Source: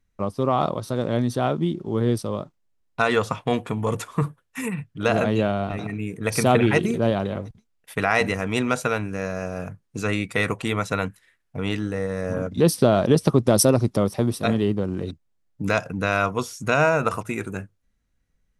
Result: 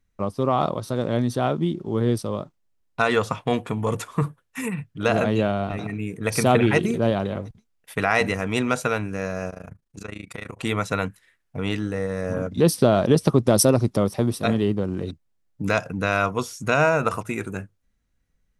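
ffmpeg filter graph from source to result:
ffmpeg -i in.wav -filter_complex "[0:a]asettb=1/sr,asplit=3[link_01][link_02][link_03];[link_01]atrim=end=9.504[link_04];[link_02]atrim=start=9.5:end=10.59,asetpts=PTS-STARTPTS,afade=type=in:duration=0.004:curve=qsin,afade=type=out:start_time=1.086:duration=0.004:curve=qsin,acompressor=threshold=-31dB:ratio=2.5:attack=3.2:release=140:knee=1:detection=peak,tremolo=f=27:d=0.919[link_05];[link_03]atrim=start=10.586[link_06];[link_04][link_05]acrossfade=duration=0.004:curve1=hsin:curve2=qsin[link_07];[link_07][link_06]acrossfade=duration=0.004:curve1=qsin:curve2=hsin" out.wav

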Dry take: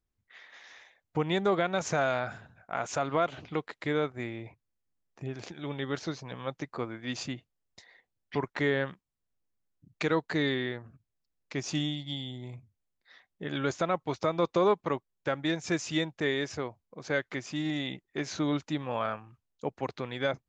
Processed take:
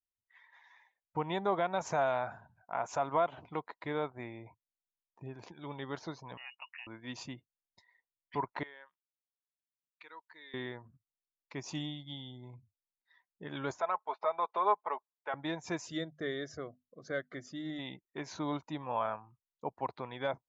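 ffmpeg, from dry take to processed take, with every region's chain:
ffmpeg -i in.wav -filter_complex "[0:a]asettb=1/sr,asplit=3[link_01][link_02][link_03];[link_01]atrim=end=6.374[link_04];[link_02]atrim=start=6.37:end=6.87,asetpts=PTS-STARTPTS,afade=type=in:duration=0.004:curve=qsin,afade=type=out:start_time=0.496:duration=0.004:curve=qsin,lowpass=frequency=2600:width_type=q:width=0.5098,lowpass=frequency=2600:width_type=q:width=0.6013,lowpass=frequency=2600:width_type=q:width=0.9,lowpass=frequency=2600:width_type=q:width=2.563,afreqshift=-3000,acompressor=threshold=-35dB:ratio=6:attack=3.2:release=140:knee=1:detection=peak[link_05];[link_03]atrim=start=6.866[link_06];[link_04][link_05]acrossfade=duration=0.004:curve1=hsin:curve2=qsin[link_07];[link_07][link_06]acrossfade=duration=0.004:curve1=qsin:curve2=hsin,asettb=1/sr,asplit=3[link_08][link_09][link_10];[link_08]atrim=end=8.634[link_11];[link_09]atrim=start=8.63:end=10.54,asetpts=PTS-STARTPTS,afade=type=in:duration=0.004:curve=qsin,afade=type=out:start_time=1.906:duration=0.004:curve=qsin,lowpass=2900,aderivative[link_12];[link_10]atrim=start=10.536[link_13];[link_11][link_12]acrossfade=duration=0.004:curve1=hsin:curve2=qsin[link_14];[link_14][link_13]acrossfade=duration=0.004:curve1=qsin:curve2=hsin,asettb=1/sr,asplit=3[link_15][link_16][link_17];[link_15]atrim=end=13.804[link_18];[link_16]atrim=start=13.8:end=15.34,asetpts=PTS-STARTPTS,afade=type=in:duration=0.004:curve=qsin,afade=type=out:start_time=1.536:duration=0.004:curve=qsin,highpass=620,lowpass=3100,aecho=1:1:4.7:0.54,atrim=end_sample=67914[link_19];[link_17]atrim=start=15.336[link_20];[link_18][link_19]acrossfade=duration=0.004:curve1=hsin:curve2=qsin[link_21];[link_21][link_20]acrossfade=duration=0.004:curve1=qsin:curve2=hsin,asettb=1/sr,asplit=3[link_22][link_23][link_24];[link_22]atrim=end=15.864[link_25];[link_23]atrim=start=15.86:end=17.79,asetpts=PTS-STARTPTS,afade=type=in:duration=0.004:curve=qsin,afade=type=out:start_time=1.926:duration=0.004:curve=qsin,asuperstop=centerf=900:order=4:qfactor=1.8,equalizer=frequency=2500:width_type=o:width=0.25:gain=-14,bandreject=frequency=50:width_type=h:width=6,bandreject=frequency=100:width_type=h:width=6,bandreject=frequency=150:width_type=h:width=6,bandreject=frequency=200:width_type=h:width=6,bandreject=frequency=250:width_type=h:width=6[link_26];[link_24]atrim=start=17.786[link_27];[link_25][link_26]acrossfade=duration=0.004:curve1=hsin:curve2=qsin[link_28];[link_28][link_27]acrossfade=duration=0.004:curve1=qsin:curve2=hsin,equalizer=frequency=960:width_type=o:width=0.36:gain=11,afftdn=noise_reduction=15:noise_floor=-50,adynamicequalizer=threshold=0.00891:dfrequency=700:dqfactor=2.2:tfrequency=700:tqfactor=2.2:attack=5:release=100:ratio=0.375:range=3:mode=boostabove:tftype=bell,volume=-8dB" out.wav

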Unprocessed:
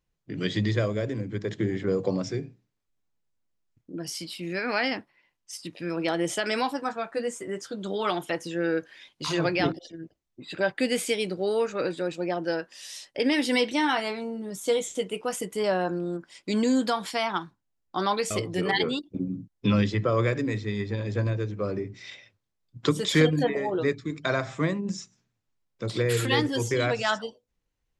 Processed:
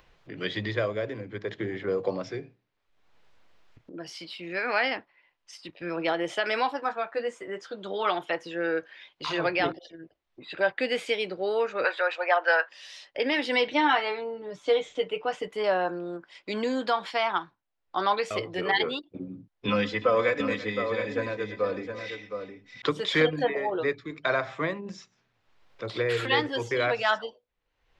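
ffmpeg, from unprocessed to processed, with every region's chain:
ffmpeg -i in.wav -filter_complex "[0:a]asettb=1/sr,asplit=3[link_01][link_02][link_03];[link_01]atrim=end=5.684[link_04];[link_02]atrim=start=5.68:end=6.13,asetpts=PTS-STARTPTS,afade=type=in:duration=0.004:curve=qsin,afade=type=out:start_time=0.446:duration=0.004:curve=qsin,agate=range=-6dB:threshold=-42dB:ratio=16:release=100:detection=peak,lowshelf=frequency=180:gain=7.5[link_05];[link_03]atrim=start=6.126[link_06];[link_04][link_05]acrossfade=duration=0.004:curve1=hsin:curve2=qsin[link_07];[link_07][link_06]acrossfade=duration=0.004:curve1=qsin:curve2=hsin,asettb=1/sr,asplit=3[link_08][link_09][link_10];[link_08]atrim=end=11.844[link_11];[link_09]atrim=start=11.84:end=12.69,asetpts=PTS-STARTPTS,afade=type=in:duration=0.004:curve=qsin,afade=type=out:start_time=0.846:duration=0.004:curve=qsin,highpass=frequency=520:width=0.5412,highpass=frequency=520:width=1.3066,equalizer=frequency=1500:width_type=o:width=2.4:gain=12.5[link_12];[link_10]atrim=start=12.686[link_13];[link_11][link_12]acrossfade=duration=0.004:curve1=hsin:curve2=qsin[link_14];[link_14][link_13]acrossfade=duration=0.004:curve1=qsin:curve2=hsin,asettb=1/sr,asplit=3[link_15][link_16][link_17];[link_15]atrim=end=13.674[link_18];[link_16]atrim=start=13.67:end=15.48,asetpts=PTS-STARTPTS,afade=type=in:duration=0.004:curve=qsin,afade=type=out:start_time=1.806:duration=0.004:curve=qsin,lowpass=5600,equalizer=frequency=87:width=0.56:gain=4.5,aecho=1:1:6.8:0.51,atrim=end_sample=79821[link_19];[link_17]atrim=start=15.476[link_20];[link_18][link_19]acrossfade=duration=0.004:curve1=hsin:curve2=qsin[link_21];[link_21][link_20]acrossfade=duration=0.004:curve1=qsin:curve2=hsin,asettb=1/sr,asplit=3[link_22][link_23][link_24];[link_22]atrim=end=19.684[link_25];[link_23]atrim=start=19.68:end=22.82,asetpts=PTS-STARTPTS,afade=type=in:duration=0.004:curve=qsin,afade=type=out:start_time=3.136:duration=0.004:curve=qsin,equalizer=frequency=8100:width_type=o:width=0.92:gain=7,aecho=1:1:4:0.71,atrim=end_sample=138474,aecho=1:1:120|336|716:0.106|0.15|0.422,atrim=end_sample=138474[link_26];[link_24]atrim=start=22.816[link_27];[link_25][link_26]acrossfade=duration=0.004:curve1=hsin:curve2=qsin[link_28];[link_28][link_27]acrossfade=duration=0.004:curve1=qsin:curve2=hsin,acrossover=split=420 4300:gain=0.141 1 0.0708[link_29][link_30][link_31];[link_29][link_30][link_31]amix=inputs=3:normalize=0,acompressor=mode=upward:threshold=-46dB:ratio=2.5,lowshelf=frequency=150:gain=9,volume=2dB" out.wav

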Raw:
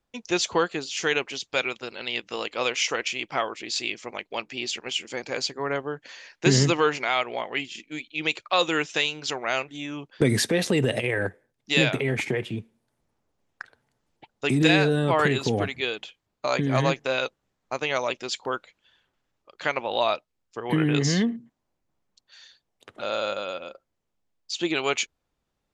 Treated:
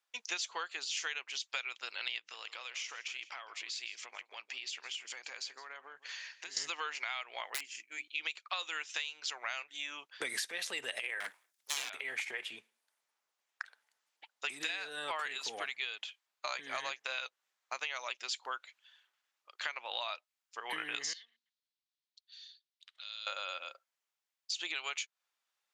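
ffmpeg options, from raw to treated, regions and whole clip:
ffmpeg -i in.wav -filter_complex "[0:a]asettb=1/sr,asplit=3[link_01][link_02][link_03];[link_01]atrim=end=2.184[link_04];[link_02]atrim=start=2.18:end=6.57,asetpts=PTS-STARTPTS,afade=type=in:duration=0.004:curve=qsin,afade=type=out:start_time=4.386:duration=0.004:curve=qsin,lowpass=10000,acompressor=threshold=-36dB:ratio=12:attack=3.2:release=140:knee=1:detection=peak,aecho=1:1:163:0.15,atrim=end_sample=193599[link_05];[link_03]atrim=start=6.566[link_06];[link_04][link_05]acrossfade=duration=0.004:curve1=hsin:curve2=qsin[link_07];[link_07][link_06]acrossfade=duration=0.004:curve1=qsin:curve2=hsin,asettb=1/sr,asplit=3[link_08][link_09][link_10];[link_08]atrim=end=7.504[link_11];[link_09]atrim=start=7.5:end=8.08,asetpts=PTS-STARTPTS,afade=type=in:duration=0.004:curve=qsin,afade=type=out:start_time=0.576:duration=0.004:curve=qsin,equalizer=frequency=3600:width_type=o:width=0.7:gain=-14.5,bandreject=frequency=50:width_type=h:width=6,bandreject=frequency=100:width_type=h:width=6,bandreject=frequency=150:width_type=h:width=6,bandreject=frequency=200:width_type=h:width=6,bandreject=frequency=250:width_type=h:width=6,bandreject=frequency=300:width_type=h:width=6,bandreject=frequency=350:width_type=h:width=6,aeval=exprs='(mod(14.1*val(0)+1,2)-1)/14.1':channel_layout=same[link_12];[link_10]atrim=start=8.076[link_13];[link_11][link_12]acrossfade=duration=0.004:curve1=hsin:curve2=qsin[link_14];[link_14][link_13]acrossfade=duration=0.004:curve1=qsin:curve2=hsin,asettb=1/sr,asplit=3[link_15][link_16][link_17];[link_15]atrim=end=11.204[link_18];[link_16]atrim=start=11.2:end=11.9,asetpts=PTS-STARTPTS,afade=type=in:duration=0.004:curve=qsin,afade=type=out:start_time=0.696:duration=0.004:curve=qsin,bass=frequency=250:gain=10,treble=frequency=4000:gain=10,aeval=exprs='abs(val(0))':channel_layout=same[link_19];[link_17]atrim=start=11.896[link_20];[link_18][link_19]acrossfade=duration=0.004:curve1=hsin:curve2=qsin[link_21];[link_21][link_20]acrossfade=duration=0.004:curve1=qsin:curve2=hsin,asettb=1/sr,asplit=3[link_22][link_23][link_24];[link_22]atrim=end=21.134[link_25];[link_23]atrim=start=21.13:end=23.27,asetpts=PTS-STARTPTS,afade=type=in:duration=0.004:curve=qsin,afade=type=out:start_time=2.136:duration=0.004:curve=qsin,acompressor=threshold=-29dB:ratio=4:attack=3.2:release=140:knee=1:detection=peak,bandpass=frequency=4000:width_type=q:width=2.6[link_26];[link_24]atrim=start=23.266[link_27];[link_25][link_26]acrossfade=duration=0.004:curve1=hsin:curve2=qsin[link_28];[link_28][link_27]acrossfade=duration=0.004:curve1=qsin:curve2=hsin,highpass=1300,acompressor=threshold=-34dB:ratio=12" out.wav

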